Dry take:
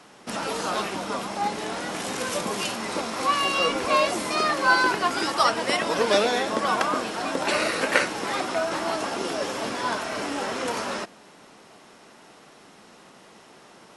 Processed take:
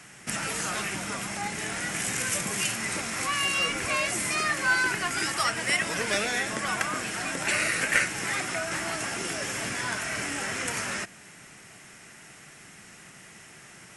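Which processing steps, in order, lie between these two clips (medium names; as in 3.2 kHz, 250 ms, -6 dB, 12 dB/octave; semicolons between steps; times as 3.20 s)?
in parallel at -0.5 dB: compression, threshold -32 dBFS, peak gain reduction 17 dB; on the sum: saturation -7.5 dBFS, distortion -25 dB; graphic EQ 125/250/500/1000/2000/4000/8000 Hz +5/-8/-10/-11/+6/-10/+6 dB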